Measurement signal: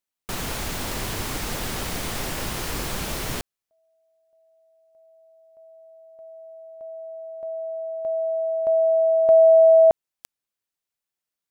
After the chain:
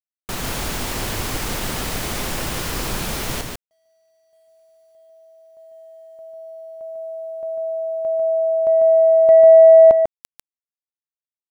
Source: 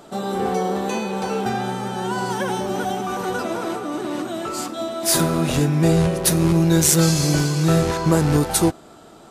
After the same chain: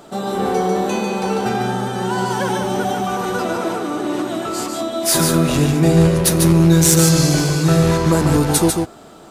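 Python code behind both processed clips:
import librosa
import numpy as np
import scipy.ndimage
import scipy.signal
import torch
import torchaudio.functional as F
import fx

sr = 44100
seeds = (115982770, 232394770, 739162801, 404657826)

p1 = 10.0 ** (-4.5 / 20.0) * np.tanh(x / 10.0 ** (-4.5 / 20.0))
p2 = fx.quant_dither(p1, sr, seeds[0], bits=12, dither='none')
p3 = p2 + fx.echo_single(p2, sr, ms=146, db=-4.5, dry=0)
y = p3 * 10.0 ** (2.5 / 20.0)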